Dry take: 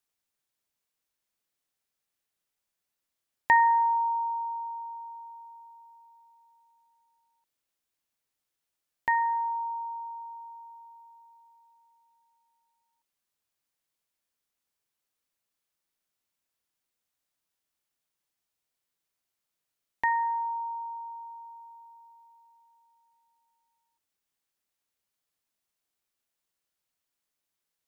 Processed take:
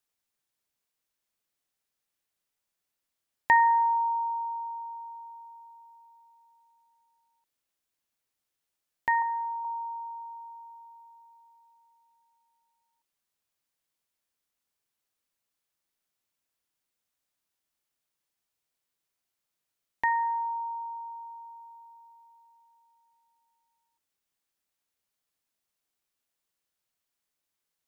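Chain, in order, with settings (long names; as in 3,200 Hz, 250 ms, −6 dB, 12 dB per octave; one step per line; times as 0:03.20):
0:09.22–0:09.65: low shelf with overshoot 580 Hz +13 dB, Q 1.5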